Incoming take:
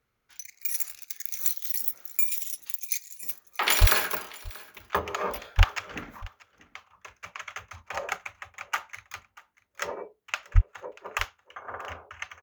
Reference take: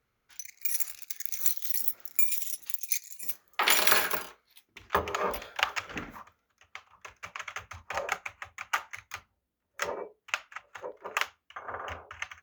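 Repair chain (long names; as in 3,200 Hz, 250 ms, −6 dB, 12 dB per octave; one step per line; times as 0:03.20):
high-pass at the plosives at 0:03.80/0:05.57/0:10.54
echo removal 636 ms −21.5 dB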